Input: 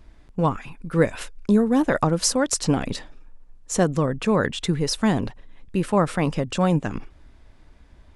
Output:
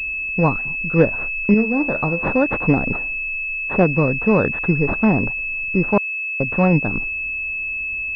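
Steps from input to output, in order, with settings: 1.54–2.27 resonator 73 Hz, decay 0.39 s, harmonics all, mix 60%; 5.98–6.4 mute; pulse-width modulation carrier 2600 Hz; gain +4.5 dB

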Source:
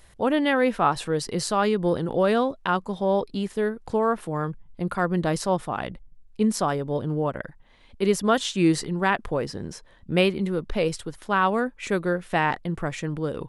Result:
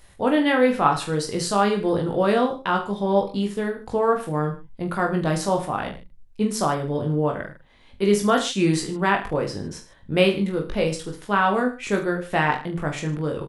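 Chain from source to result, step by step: reverse bouncing-ball echo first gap 20 ms, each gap 1.2×, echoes 5

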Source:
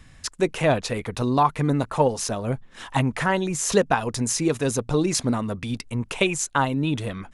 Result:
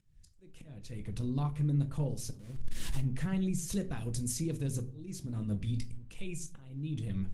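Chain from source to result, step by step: 2.39–3.01 delta modulation 64 kbps, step -21.5 dBFS; recorder AGC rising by 5.9 dB/s; passive tone stack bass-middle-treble 10-0-1; limiter -34.5 dBFS, peak gain reduction 8 dB; 3.69–4.32 high shelf 9200 Hz +11.5 dB; auto swell 0.582 s; 5.22–6.22 doubler 19 ms -8 dB; shoebox room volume 280 m³, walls furnished, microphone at 0.73 m; gain +7.5 dB; Opus 20 kbps 48000 Hz

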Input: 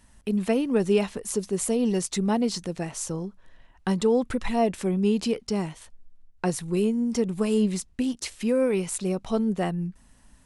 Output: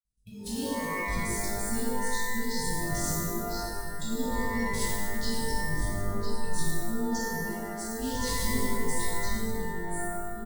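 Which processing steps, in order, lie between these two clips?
bin magnitudes rounded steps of 15 dB; in parallel at -11.5 dB: Schmitt trigger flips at -40.5 dBFS; on the sum: elliptic band-stop 190–3800 Hz, stop band 40 dB; on a send: echo 1.002 s -15.5 dB; on the sum: expander -45 dBFS; negative-ratio compressor -36 dBFS, ratio -1; sample leveller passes 1; spectral noise reduction 16 dB; shimmer reverb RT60 1.3 s, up +12 st, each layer -2 dB, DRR -8 dB; gain -9 dB

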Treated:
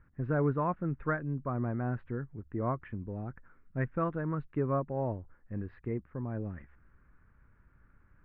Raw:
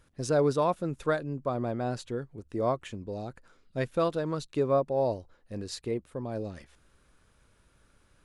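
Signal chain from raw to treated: steep low-pass 1900 Hz 36 dB/oct; bell 570 Hz -12.5 dB 1.7 oct; gain +3.5 dB

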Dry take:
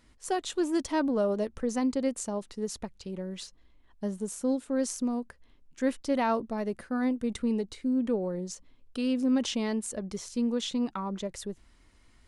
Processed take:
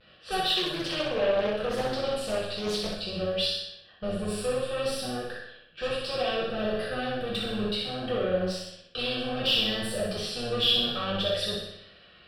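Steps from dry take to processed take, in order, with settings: octaver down 1 oct, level -4 dB; HPF 230 Hz 12 dB/oct; compressor 4:1, threshold -30 dBFS, peak gain reduction 7.5 dB; soft clip -37 dBFS, distortion -8 dB; tilt -1.5 dB/oct; fixed phaser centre 1400 Hz, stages 8; flutter echo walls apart 10.5 m, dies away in 0.78 s; non-linear reverb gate 0.19 s falling, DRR -6 dB; vibrato 0.62 Hz 35 cents; low-pass opened by the level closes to 2600 Hz, open at -38 dBFS; band shelf 3200 Hz +9.5 dB; 0.55–2.98 Doppler distortion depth 0.26 ms; gain +6.5 dB

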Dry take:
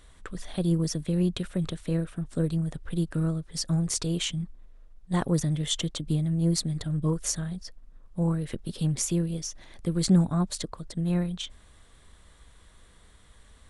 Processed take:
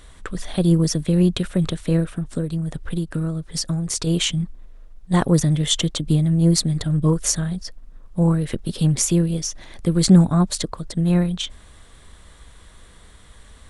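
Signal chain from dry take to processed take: 2.05–4.07 compressor 4:1, threshold -30 dBFS, peak gain reduction 8 dB; gain +8.5 dB

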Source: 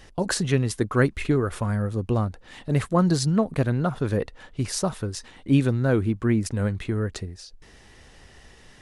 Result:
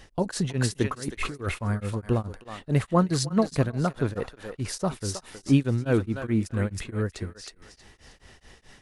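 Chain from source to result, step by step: 0.84–1.52 negative-ratio compressor -29 dBFS, ratio -1; thinning echo 0.318 s, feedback 28%, high-pass 770 Hz, level -5 dB; beating tremolo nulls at 4.7 Hz

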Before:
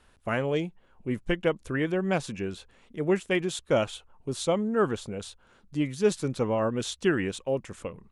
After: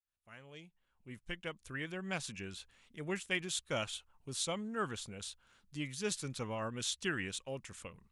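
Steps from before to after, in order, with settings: opening faded in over 2.44 s; passive tone stack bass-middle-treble 5-5-5; gain +5 dB

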